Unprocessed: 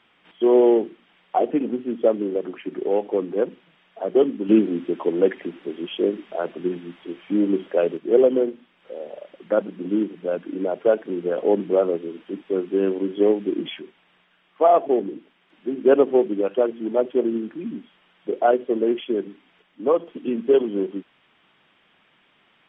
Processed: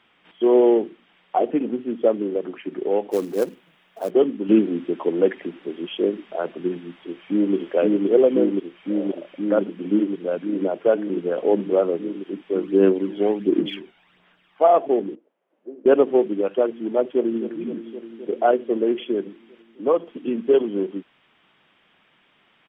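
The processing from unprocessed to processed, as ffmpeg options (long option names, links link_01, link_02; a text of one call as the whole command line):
ffmpeg -i in.wav -filter_complex "[0:a]asplit=3[link_01][link_02][link_03];[link_01]afade=type=out:start_time=3.1:duration=0.02[link_04];[link_02]acrusher=bits=5:mode=log:mix=0:aa=0.000001,afade=type=in:start_time=3.1:duration=0.02,afade=type=out:start_time=4.09:duration=0.02[link_05];[link_03]afade=type=in:start_time=4.09:duration=0.02[link_06];[link_04][link_05][link_06]amix=inputs=3:normalize=0,asplit=2[link_07][link_08];[link_08]afade=type=in:start_time=6.95:duration=0.01,afade=type=out:start_time=7.55:duration=0.01,aecho=0:1:520|1040|1560|2080|2600|3120|3640|4160|4680|5200|5720|6240:0.891251|0.757563|0.643929|0.547339|0.465239|0.395453|0.336135|0.285715|0.242857|0.206429|0.175464|0.149145[link_09];[link_07][link_09]amix=inputs=2:normalize=0,asplit=3[link_10][link_11][link_12];[link_10]afade=type=out:start_time=12.61:duration=0.02[link_13];[link_11]aphaser=in_gain=1:out_gain=1:delay=1.4:decay=0.5:speed=1.4:type=sinusoidal,afade=type=in:start_time=12.61:duration=0.02,afade=type=out:start_time=14.64:duration=0.02[link_14];[link_12]afade=type=in:start_time=14.64:duration=0.02[link_15];[link_13][link_14][link_15]amix=inputs=3:normalize=0,asettb=1/sr,asplit=3[link_16][link_17][link_18];[link_16]atrim=end=15.154[link_19];[link_17]atrim=start=15.15:end=15.86,asetpts=PTS-STARTPTS,afade=type=in:duration=0.004:curve=qsin,afade=type=out:start_time=0.706:duration=0.004:curve=qsin,bandpass=frequency=540:width_type=q:width=3.4[link_20];[link_18]atrim=start=15.856[link_21];[link_19][link_20]acrossfade=duration=0.004:curve1=hsin:curve2=qsin[link_22];[link_22][link_21]acrossfade=duration=0.004:curve1=qsin:curve2=hsin,asplit=2[link_23][link_24];[link_24]afade=type=in:start_time=17.06:duration=0.01,afade=type=out:start_time=17.55:duration=0.01,aecho=0:1:260|520|780|1040|1300|1560|1820|2080|2340|2600|2860|3120:0.298538|0.223904|0.167928|0.125946|0.0944594|0.0708445|0.0531334|0.03985|0.0298875|0.0224157|0.0168117|0.0126088[link_25];[link_23][link_25]amix=inputs=2:normalize=0" out.wav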